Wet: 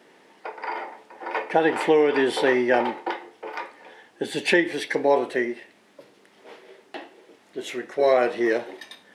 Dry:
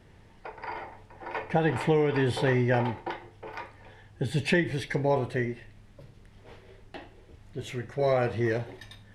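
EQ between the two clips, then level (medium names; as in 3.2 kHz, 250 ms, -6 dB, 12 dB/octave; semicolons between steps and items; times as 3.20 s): high-pass 270 Hz 24 dB/octave; +6.5 dB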